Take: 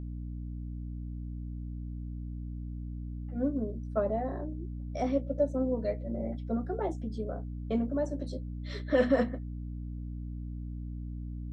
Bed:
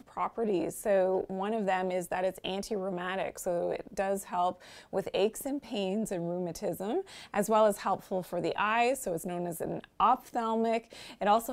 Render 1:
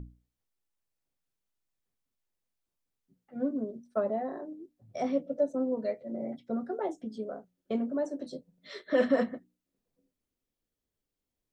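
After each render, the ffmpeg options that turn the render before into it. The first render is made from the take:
-af "bandreject=f=60:t=h:w=6,bandreject=f=120:t=h:w=6,bandreject=f=180:t=h:w=6,bandreject=f=240:t=h:w=6,bandreject=f=300:t=h:w=6"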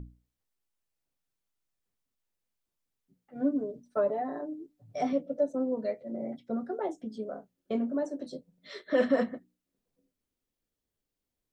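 -filter_complex "[0:a]asettb=1/sr,asplit=3[a][b][c];[a]atrim=end=3.354[d];[b]atrim=start=3.35:end=5.13,asetpts=PTS-STARTPTS,afade=t=in:d=0.004:c=qsin,afade=t=out:st=1.776:d=0.004:c=qsin,aecho=1:1:6.8:0.72,atrim=end_sample=78498[e];[c]atrim=start=5.126[f];[d][e]acrossfade=d=0.004:c1=hsin:c2=qsin[g];[g][f]acrossfade=d=0.004:c1=qsin:c2=hsin,asettb=1/sr,asplit=3[h][i][j];[h]atrim=end=7.264[k];[i]atrim=start=7.26:end=8.03,asetpts=PTS-STARTPTS,afade=t=in:d=0.004:c=qsin,afade=t=out:st=0.766:d=0.004:c=qsin,asplit=2[l][m];[m]adelay=25,volume=-10.5dB[n];[l][n]amix=inputs=2:normalize=0,atrim=end_sample=33957[o];[j]atrim=start=8.026[p];[k][o]acrossfade=d=0.004:c1=hsin:c2=qsin[q];[q][p]acrossfade=d=0.004:c1=qsin:c2=hsin"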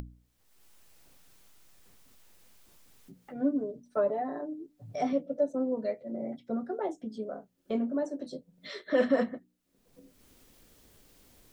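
-af "acompressor=mode=upward:threshold=-37dB:ratio=2.5"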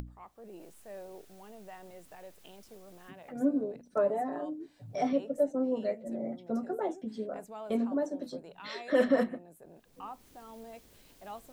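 -filter_complex "[1:a]volume=-19dB[a];[0:a][a]amix=inputs=2:normalize=0"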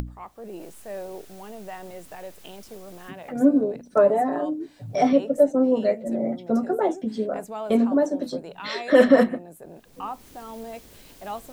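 -af "volume=10.5dB"

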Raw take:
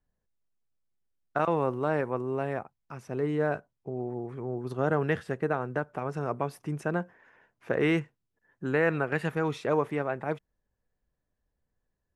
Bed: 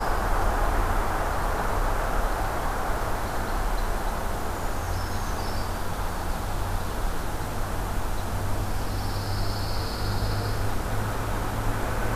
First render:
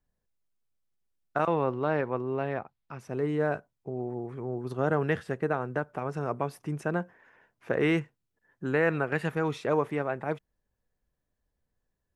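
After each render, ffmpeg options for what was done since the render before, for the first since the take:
-filter_complex "[0:a]asettb=1/sr,asplit=3[a][b][c];[a]atrim=end=1.504[d];[b]atrim=start=1.5:end=3,asetpts=PTS-STARTPTS,afade=t=in:d=0.004:c=qsin,afade=t=out:st=1.496:d=0.004:c=qsin,highshelf=f=5.7k:t=q:w=1.5:g=-11[e];[c]atrim=start=2.996[f];[d][e]acrossfade=d=0.004:c1=hsin:c2=qsin[g];[g][f]acrossfade=d=0.004:c1=qsin:c2=hsin"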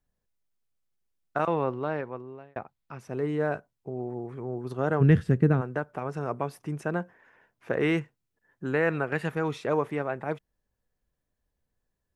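-filter_complex "[0:a]asplit=3[a][b][c];[a]afade=t=out:st=5:d=0.02[d];[b]asubboost=boost=8:cutoff=250,afade=t=in:st=5:d=0.02,afade=t=out:st=5.6:d=0.02[e];[c]afade=t=in:st=5.6:d=0.02[f];[d][e][f]amix=inputs=3:normalize=0,asplit=2[g][h];[g]atrim=end=2.56,asetpts=PTS-STARTPTS,afade=t=out:st=1.65:d=0.91[i];[h]atrim=start=2.56,asetpts=PTS-STARTPTS,afade=t=in:d=0.004:c=hsin[j];[i][j]concat=n=2:v=0:a=1"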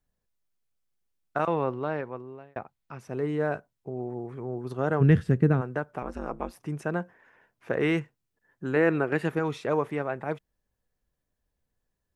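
-filter_complex "[0:a]asettb=1/sr,asplit=3[a][b][c];[a]atrim=end=6.024[d];[b]atrim=start=6.02:end=6.57,asetpts=PTS-STARTPTS,afade=t=in:d=0.004:c=qsin,afade=t=out:st=0.546:d=0.004:c=qsin,aeval=exprs='val(0)*sin(2*PI*94*n/s)':c=same[e];[c]atrim=start=6.566[f];[d][e]acrossfade=d=0.004:c1=hsin:c2=qsin[g];[g][f]acrossfade=d=0.004:c1=qsin:c2=hsin,asettb=1/sr,asplit=3[h][i][j];[h]atrim=end=8.764[k];[i]atrim=start=8.76:end=9.39,asetpts=PTS-STARTPTS,afade=t=in:d=0.004:c=qsin,afade=t=out:st=0.626:d=0.004:c=qsin,equalizer=f=340:t=o:w=0.77:g=7.5[l];[j]atrim=start=9.386[m];[k][l]acrossfade=d=0.004:c1=hsin:c2=qsin[n];[n][m]acrossfade=d=0.004:c1=qsin:c2=hsin"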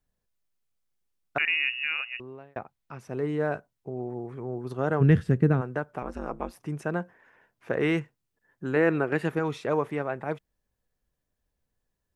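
-filter_complex "[0:a]asettb=1/sr,asplit=3[a][b][c];[a]atrim=end=1.384[d];[b]atrim=start=1.38:end=2.2,asetpts=PTS-STARTPTS,afade=t=in:d=0.004:c=qsin,afade=t=out:st=0.816:d=0.004:c=qsin,lowpass=f=2.6k:t=q:w=0.5098,lowpass=f=2.6k:t=q:w=0.6013,lowpass=f=2.6k:t=q:w=0.9,lowpass=f=2.6k:t=q:w=2.563,afreqshift=-3000[e];[c]atrim=start=2.196[f];[d][e]acrossfade=d=0.004:c1=hsin:c2=qsin[g];[g][f]acrossfade=d=0.004:c1=qsin:c2=hsin"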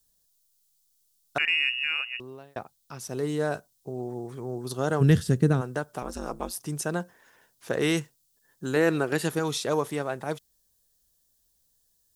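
-af "aexciter=amount=6.3:drive=6.1:freq=3.4k"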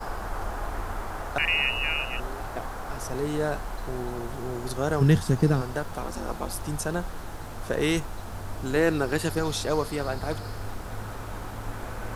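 -filter_complex "[1:a]volume=-8dB[a];[0:a][a]amix=inputs=2:normalize=0"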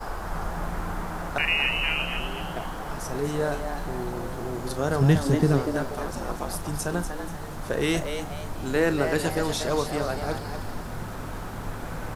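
-filter_complex "[0:a]asplit=2[a][b];[b]adelay=35,volume=-13dB[c];[a][c]amix=inputs=2:normalize=0,asplit=5[d][e][f][g][h];[e]adelay=241,afreqshift=140,volume=-8dB[i];[f]adelay=482,afreqshift=280,volume=-16.6dB[j];[g]adelay=723,afreqshift=420,volume=-25.3dB[k];[h]adelay=964,afreqshift=560,volume=-33.9dB[l];[d][i][j][k][l]amix=inputs=5:normalize=0"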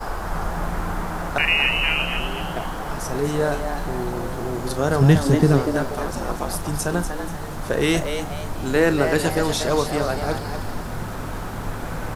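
-af "volume=5dB"

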